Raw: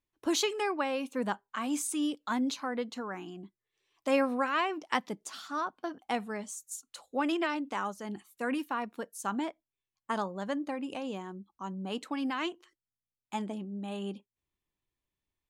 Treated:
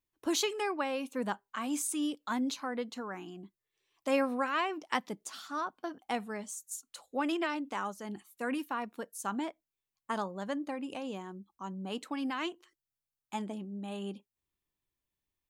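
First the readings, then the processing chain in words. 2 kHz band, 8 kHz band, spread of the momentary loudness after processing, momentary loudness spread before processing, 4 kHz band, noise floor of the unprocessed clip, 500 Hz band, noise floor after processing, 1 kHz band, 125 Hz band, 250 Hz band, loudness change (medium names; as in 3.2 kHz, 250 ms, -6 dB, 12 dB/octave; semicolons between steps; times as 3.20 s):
-2.0 dB, 0.0 dB, 12 LU, 12 LU, -1.5 dB, under -85 dBFS, -2.0 dB, under -85 dBFS, -2.0 dB, no reading, -2.0 dB, -2.0 dB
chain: treble shelf 11 kHz +6.5 dB; trim -2 dB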